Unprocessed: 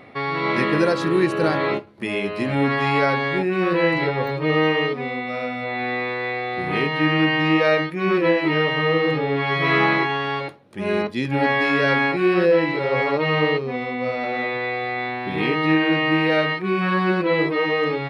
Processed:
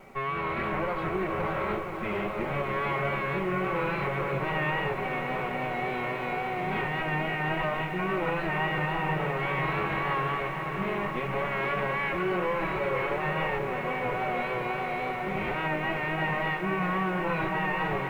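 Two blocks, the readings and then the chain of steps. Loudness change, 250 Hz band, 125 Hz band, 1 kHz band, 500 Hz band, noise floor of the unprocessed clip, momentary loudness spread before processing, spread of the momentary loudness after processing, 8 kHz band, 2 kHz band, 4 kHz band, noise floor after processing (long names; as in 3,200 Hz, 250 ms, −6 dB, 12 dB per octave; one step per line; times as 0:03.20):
−8.5 dB, −12.0 dB, −7.0 dB, −5.0 dB, −10.0 dB, −30 dBFS, 8 LU, 3 LU, can't be measured, −8.5 dB, −12.5 dB, −33 dBFS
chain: lower of the sound and its delayed copy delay 5.3 ms
low-pass filter 2,400 Hz 24 dB per octave
notch filter 1,700 Hz, Q 9.5
dynamic equaliser 300 Hz, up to −7 dB, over −36 dBFS, Q 1.6
brickwall limiter −19 dBFS, peak gain reduction 9.5 dB
background noise pink −62 dBFS
pitch vibrato 3.6 Hz 41 cents
feedback delay with all-pass diffusion 740 ms, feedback 73%, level −12.5 dB
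feedback echo at a low word length 488 ms, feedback 80%, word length 9 bits, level −9 dB
level −3 dB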